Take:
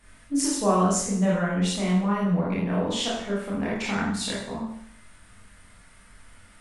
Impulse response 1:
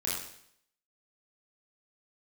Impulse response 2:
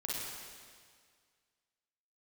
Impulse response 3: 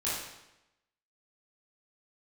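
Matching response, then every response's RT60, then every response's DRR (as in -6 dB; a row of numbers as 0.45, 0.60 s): 1; 0.70, 1.9, 0.90 s; -6.5, -5.5, -10.0 dB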